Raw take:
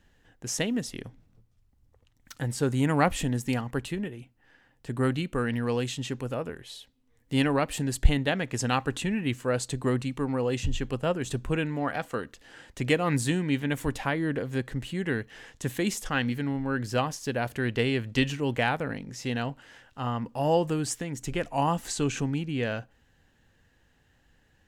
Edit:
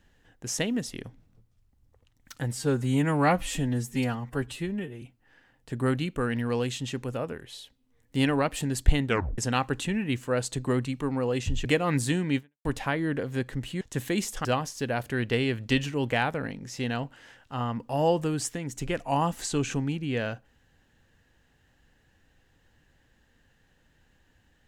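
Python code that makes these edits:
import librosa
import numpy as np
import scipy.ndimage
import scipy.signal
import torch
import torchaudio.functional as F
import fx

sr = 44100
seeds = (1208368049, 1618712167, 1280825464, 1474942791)

y = fx.edit(x, sr, fx.stretch_span(start_s=2.53, length_s=1.66, factor=1.5),
    fx.tape_stop(start_s=8.23, length_s=0.32),
    fx.cut(start_s=10.82, length_s=2.02),
    fx.fade_out_span(start_s=13.57, length_s=0.27, curve='exp'),
    fx.cut(start_s=15.0, length_s=0.5),
    fx.cut(start_s=16.14, length_s=0.77), tone=tone)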